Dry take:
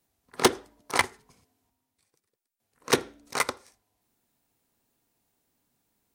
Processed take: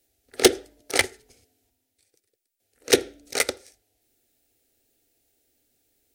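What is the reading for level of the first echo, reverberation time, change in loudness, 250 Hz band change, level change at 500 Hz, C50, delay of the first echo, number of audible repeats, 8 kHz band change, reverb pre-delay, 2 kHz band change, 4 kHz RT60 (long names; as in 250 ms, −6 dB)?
no echo audible, no reverb audible, +4.5 dB, +4.0 dB, +6.0 dB, no reverb audible, no echo audible, no echo audible, +6.5 dB, no reverb audible, +2.5 dB, no reverb audible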